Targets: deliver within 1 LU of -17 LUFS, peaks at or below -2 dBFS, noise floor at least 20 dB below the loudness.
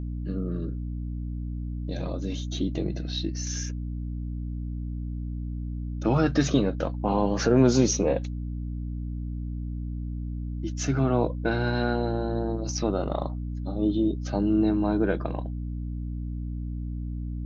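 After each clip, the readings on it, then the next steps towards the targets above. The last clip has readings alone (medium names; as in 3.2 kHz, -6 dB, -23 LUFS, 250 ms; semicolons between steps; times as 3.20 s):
hum 60 Hz; highest harmonic 300 Hz; hum level -29 dBFS; loudness -28.5 LUFS; peak level -7.5 dBFS; loudness target -17.0 LUFS
-> hum notches 60/120/180/240/300 Hz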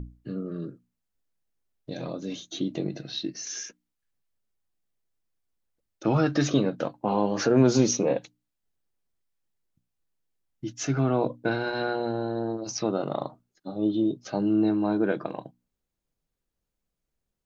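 hum not found; loudness -27.0 LUFS; peak level -8.0 dBFS; loudness target -17.0 LUFS
-> trim +10 dB; peak limiter -2 dBFS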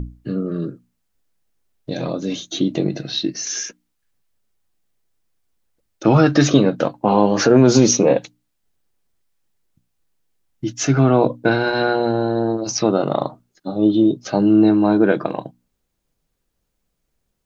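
loudness -17.5 LUFS; peak level -2.0 dBFS; noise floor -73 dBFS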